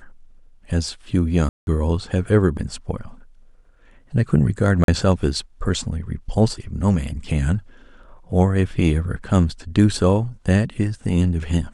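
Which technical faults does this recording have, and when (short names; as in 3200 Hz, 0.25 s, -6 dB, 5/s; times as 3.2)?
1.49–1.67 gap 0.181 s
4.84–4.88 gap 42 ms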